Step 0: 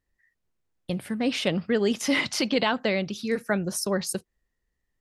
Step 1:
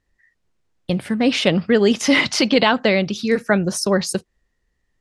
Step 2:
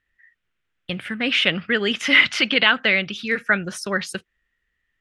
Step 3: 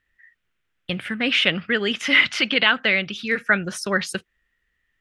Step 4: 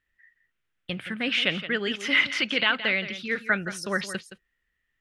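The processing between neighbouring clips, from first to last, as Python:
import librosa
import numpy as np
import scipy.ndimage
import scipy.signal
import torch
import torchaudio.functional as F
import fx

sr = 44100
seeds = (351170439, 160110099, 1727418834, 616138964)

y1 = scipy.signal.sosfilt(scipy.signal.butter(2, 7900.0, 'lowpass', fs=sr, output='sos'), x)
y1 = y1 * librosa.db_to_amplitude(8.5)
y2 = fx.band_shelf(y1, sr, hz=2100.0, db=13.5, octaves=1.7)
y2 = y2 * librosa.db_to_amplitude(-9.0)
y3 = fx.rider(y2, sr, range_db=3, speed_s=2.0)
y3 = y3 * librosa.db_to_amplitude(-1.0)
y4 = y3 + 10.0 ** (-12.5 / 20.0) * np.pad(y3, (int(170 * sr / 1000.0), 0))[:len(y3)]
y4 = y4 * librosa.db_to_amplitude(-5.5)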